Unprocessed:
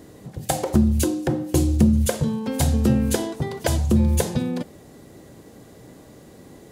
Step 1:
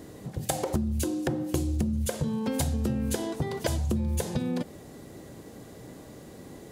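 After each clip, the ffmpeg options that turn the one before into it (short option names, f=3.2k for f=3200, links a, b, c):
-af "acompressor=threshold=-25dB:ratio=6"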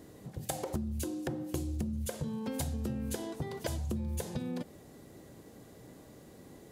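-af "equalizer=f=13k:w=2:g=3,volume=-7.5dB"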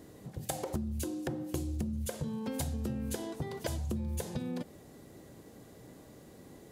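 -af anull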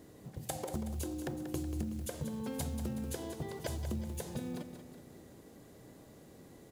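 -af "acrusher=bits=7:mode=log:mix=0:aa=0.000001,aecho=1:1:186|372|558|744|930|1116:0.335|0.167|0.0837|0.0419|0.0209|0.0105,volume=-3dB"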